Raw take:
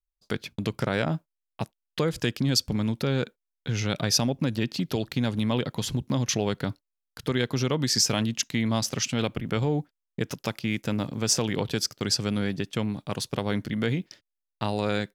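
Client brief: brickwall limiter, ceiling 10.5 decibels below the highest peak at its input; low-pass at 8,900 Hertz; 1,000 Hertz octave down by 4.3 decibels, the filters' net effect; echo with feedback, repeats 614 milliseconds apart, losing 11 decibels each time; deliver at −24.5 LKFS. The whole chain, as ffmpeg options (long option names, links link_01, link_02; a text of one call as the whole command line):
ffmpeg -i in.wav -af "lowpass=8900,equalizer=frequency=1000:width_type=o:gain=-6,alimiter=limit=-20.5dB:level=0:latency=1,aecho=1:1:614|1228|1842:0.282|0.0789|0.0221,volume=7.5dB" out.wav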